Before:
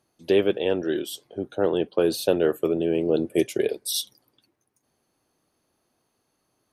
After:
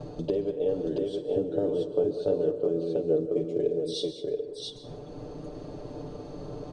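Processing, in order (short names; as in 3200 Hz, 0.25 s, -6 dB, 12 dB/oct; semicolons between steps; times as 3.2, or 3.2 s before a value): upward compressor, threshold -35 dBFS; tilt -4.5 dB/oct; companded quantiser 8-bit; steep low-pass 8900 Hz 48 dB/oct; comb 6.8 ms, depth 74%; expander -42 dBFS; compressor 12:1, threshold -33 dBFS, peak gain reduction 25.5 dB; graphic EQ 500/2000/4000 Hz +11/-5/+7 dB; tapped delay 50/197/679 ms -12.5/-14.5/-3 dB; reverb RT60 1.2 s, pre-delay 0.118 s, DRR 10.5 dB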